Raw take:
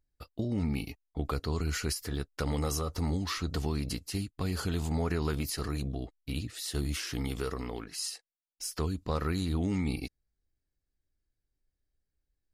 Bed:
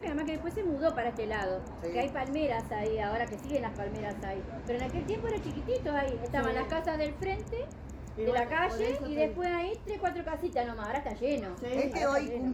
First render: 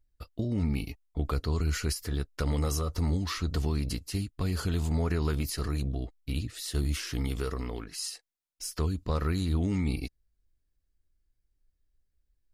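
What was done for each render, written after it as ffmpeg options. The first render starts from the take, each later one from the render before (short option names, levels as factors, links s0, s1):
-af "lowshelf=f=69:g=10.5,bandreject=f=800:w=12"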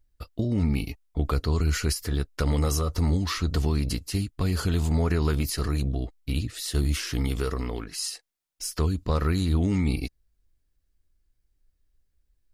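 -af "volume=1.68"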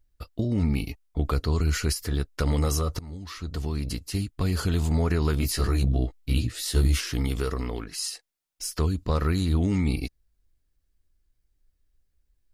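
-filter_complex "[0:a]asettb=1/sr,asplit=3[s0][s1][s2];[s0]atrim=end=5.414[s3];[s1]atrim=start=5.41:end=7.01,asetpts=PTS-STARTPTS,afade=t=in:d=0.004:c=qsin,afade=t=out:st=1.596:d=0.004:c=qsin,asplit=2[s4][s5];[s5]adelay=16,volume=0.794[s6];[s4][s6]amix=inputs=2:normalize=0,atrim=end_sample=70560[s7];[s2]atrim=start=7.006[s8];[s3][s7]acrossfade=d=0.004:c1=hsin:c2=qsin[s9];[s9][s8]acrossfade=d=0.004:c1=qsin:c2=hsin,asplit=2[s10][s11];[s10]atrim=end=2.99,asetpts=PTS-STARTPTS,afade=t=out:st=2.986:d=0.004:c=hsin:silence=0.0891251[s12];[s11]atrim=start=2.99,asetpts=PTS-STARTPTS,afade=t=in:d=1.34:silence=0.0891251[s13];[s12][s13]concat=n=2:v=0:a=1"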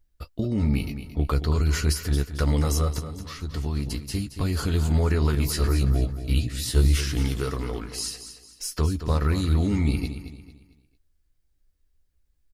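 -filter_complex "[0:a]asplit=2[s0][s1];[s1]adelay=14,volume=0.316[s2];[s0][s2]amix=inputs=2:normalize=0,aecho=1:1:224|448|672|896:0.282|0.101|0.0365|0.0131"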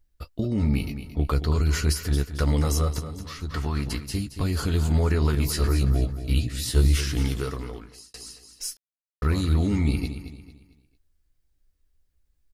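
-filter_complex "[0:a]asettb=1/sr,asplit=3[s0][s1][s2];[s0]atrim=end=3.504[s3];[s1]atrim=start=3.5:end=4.08,asetpts=PTS-STARTPTS,afade=t=in:d=0.004:c=qsin,afade=t=out:st=0.576:d=0.004:c=qsin,equalizer=f=1400:t=o:w=1.5:g=11[s4];[s2]atrim=start=4.076[s5];[s3][s4]acrossfade=d=0.004:c1=hsin:c2=qsin[s6];[s6][s5]acrossfade=d=0.004:c1=qsin:c2=hsin,asplit=4[s7][s8][s9][s10];[s7]atrim=end=8.14,asetpts=PTS-STARTPTS,afade=t=out:st=7.32:d=0.82[s11];[s8]atrim=start=8.14:end=8.77,asetpts=PTS-STARTPTS,afade=t=in:d=0.004:c=hsin,afade=t=out:st=0.626:d=0.004:c=hsin[s12];[s9]atrim=start=8.77:end=9.22,asetpts=PTS-STARTPTS,volume=0[s13];[s10]atrim=start=9.22,asetpts=PTS-STARTPTS,afade=t=in:d=0.004:c=hsin[s14];[s11][s12][s13][s14]concat=n=4:v=0:a=1"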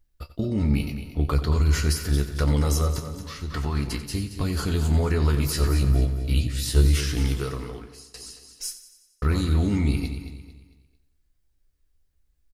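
-filter_complex "[0:a]asplit=2[s0][s1];[s1]adelay=28,volume=0.211[s2];[s0][s2]amix=inputs=2:normalize=0,aecho=1:1:90|180|270|360|450|540:0.211|0.123|0.0711|0.0412|0.0239|0.0139"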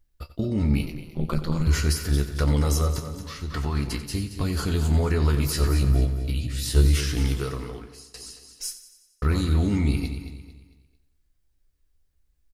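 -filter_complex "[0:a]asettb=1/sr,asplit=3[s0][s1][s2];[s0]atrim=end=0.854[s3];[s1]atrim=start=0.85:end=1.67,asetpts=PTS-STARTPTS,afade=t=in:d=0.004:c=qsin,afade=t=out:st=0.816:d=0.004:c=qsin,aeval=exprs='val(0)*sin(2*PI*82*n/s)':c=same[s4];[s2]atrim=start=1.666[s5];[s3][s4]acrossfade=d=0.004:c1=hsin:c2=qsin[s6];[s6][s5]acrossfade=d=0.004:c1=qsin:c2=hsin,asettb=1/sr,asplit=3[s7][s8][s9];[s7]atrim=end=6.304[s10];[s8]atrim=start=6.3:end=6.71,asetpts=PTS-STARTPTS,afade=t=in:d=0.004:c=qsin,afade=t=out:st=0.406:d=0.004:c=qsin,acompressor=threshold=0.0631:ratio=2.5:attack=3.2:release=140:knee=1:detection=peak[s11];[s9]atrim=start=6.706[s12];[s10][s11]acrossfade=d=0.004:c1=hsin:c2=qsin[s13];[s13][s12]acrossfade=d=0.004:c1=qsin:c2=hsin"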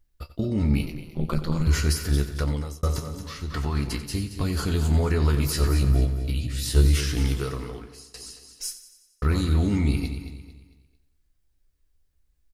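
-filter_complex "[0:a]asplit=2[s0][s1];[s0]atrim=end=2.83,asetpts=PTS-STARTPTS,afade=t=out:st=2.27:d=0.56[s2];[s1]atrim=start=2.83,asetpts=PTS-STARTPTS,afade=t=in:d=0.004:c=hsin[s3];[s2][s3]concat=n=2:v=0:a=1"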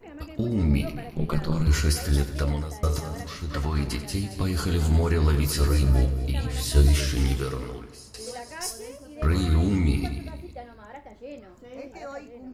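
-filter_complex "[1:a]volume=0.335[s0];[0:a][s0]amix=inputs=2:normalize=0"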